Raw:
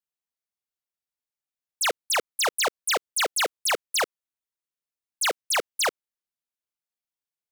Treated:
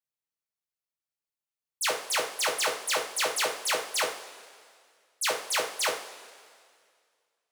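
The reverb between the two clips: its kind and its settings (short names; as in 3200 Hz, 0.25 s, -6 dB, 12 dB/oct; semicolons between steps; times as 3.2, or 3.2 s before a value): two-slope reverb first 0.41 s, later 2.1 s, from -16 dB, DRR -1.5 dB; gain -6.5 dB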